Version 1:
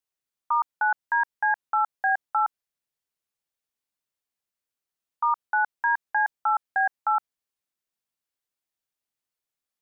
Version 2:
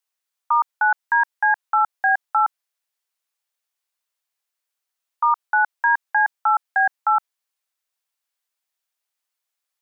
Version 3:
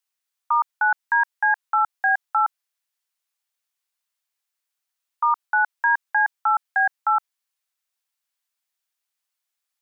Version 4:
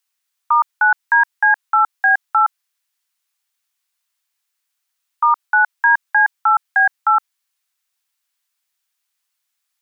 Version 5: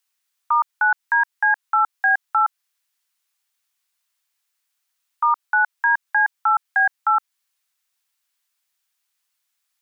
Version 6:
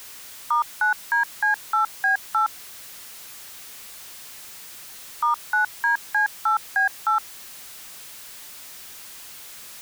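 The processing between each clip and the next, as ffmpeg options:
-af "highpass=660,volume=6dB"
-af "lowshelf=f=480:g=-10.5"
-af "highpass=830,volume=7dB"
-af "alimiter=limit=-10.5dB:level=0:latency=1:release=204"
-af "aeval=exprs='val(0)+0.5*0.0282*sgn(val(0))':c=same,volume=-4dB"

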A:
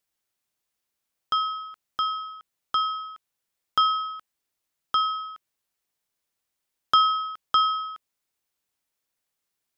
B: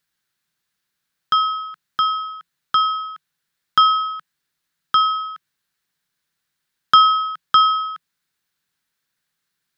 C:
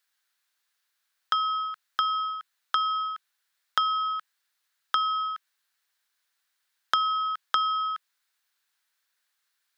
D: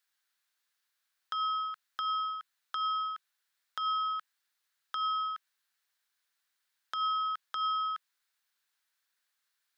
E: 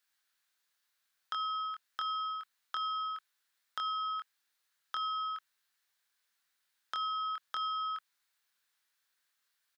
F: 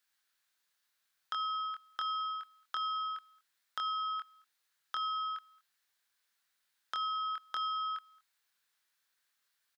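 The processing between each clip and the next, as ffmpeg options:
-af "equalizer=f=160:t=o:w=0.67:g=11,equalizer=f=630:t=o:w=0.67:g=-4,equalizer=f=1.6k:t=o:w=0.67:g=10,equalizer=f=4k:t=o:w=0.67:g=6,volume=2.5dB"
-af "highpass=650,acompressor=threshold=-23dB:ratio=6"
-af "alimiter=limit=-18dB:level=0:latency=1:release=105,volume=-4dB"
-filter_complex "[0:a]acompressor=threshold=-33dB:ratio=6,asplit=2[a][b];[b]adelay=24,volume=-5dB[c];[a][c]amix=inputs=2:normalize=0"
-filter_complex "[0:a]asplit=2[a][b];[b]adelay=221.6,volume=-26dB,highshelf=f=4k:g=-4.99[c];[a][c]amix=inputs=2:normalize=0"

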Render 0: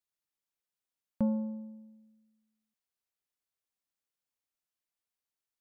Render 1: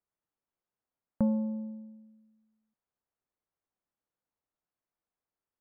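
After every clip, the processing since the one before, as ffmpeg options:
-filter_complex "[0:a]lowpass=1.2k,asplit=2[a][b];[b]acompressor=threshold=-39dB:ratio=6,volume=0.5dB[c];[a][c]amix=inputs=2:normalize=0"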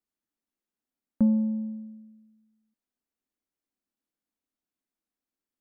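-af "equalizer=f=125:t=o:w=1:g=-10,equalizer=f=250:t=o:w=1:g=11,equalizer=f=500:t=o:w=1:g=-4,equalizer=f=1k:t=o:w=1:g=-5"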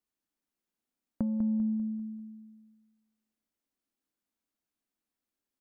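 -af "acompressor=threshold=-29dB:ratio=6,aecho=1:1:197|394|591|788|985:0.422|0.181|0.078|0.0335|0.0144"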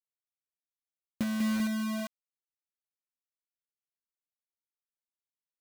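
-af "bandpass=f=310:t=q:w=0.51:csg=0,acrusher=bits=5:mix=0:aa=0.000001"

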